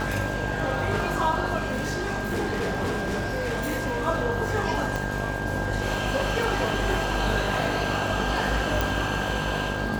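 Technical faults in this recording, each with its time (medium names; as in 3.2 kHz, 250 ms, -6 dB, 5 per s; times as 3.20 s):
buzz 50 Hz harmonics 21 -31 dBFS
crackle 71 per s -33 dBFS
whine 1.6 kHz -32 dBFS
1.57–4.08 s: clipped -23.5 dBFS
4.96 s: pop
8.81 s: pop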